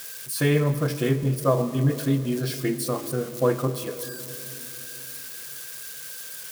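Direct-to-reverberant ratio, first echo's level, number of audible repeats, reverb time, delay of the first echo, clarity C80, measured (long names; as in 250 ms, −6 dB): 11.0 dB, no echo audible, no echo audible, 3.0 s, no echo audible, 13.0 dB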